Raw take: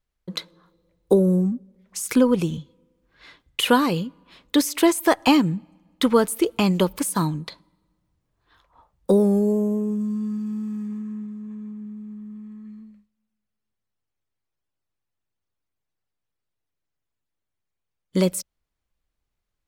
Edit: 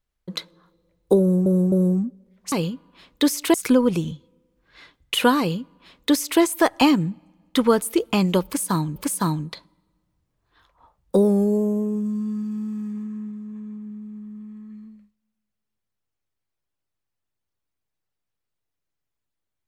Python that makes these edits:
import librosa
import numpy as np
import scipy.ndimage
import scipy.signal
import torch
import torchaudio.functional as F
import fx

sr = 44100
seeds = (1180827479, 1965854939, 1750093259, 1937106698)

y = fx.edit(x, sr, fx.repeat(start_s=1.2, length_s=0.26, count=3),
    fx.duplicate(start_s=3.85, length_s=1.02, to_s=2.0),
    fx.repeat(start_s=6.91, length_s=0.51, count=2), tone=tone)